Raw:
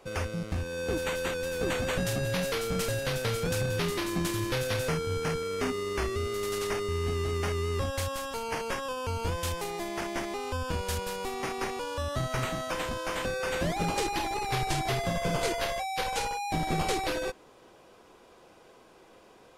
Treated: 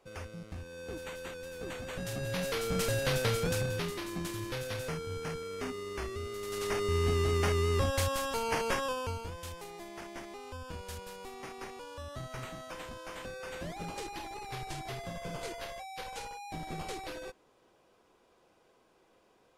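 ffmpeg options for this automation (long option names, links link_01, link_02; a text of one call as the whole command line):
ffmpeg -i in.wav -af "volume=10dB,afade=type=in:start_time=1.9:duration=1.27:silence=0.251189,afade=type=out:start_time=3.17:duration=0.78:silence=0.375837,afade=type=in:start_time=6.46:duration=0.5:silence=0.354813,afade=type=out:start_time=8.83:duration=0.44:silence=0.237137" out.wav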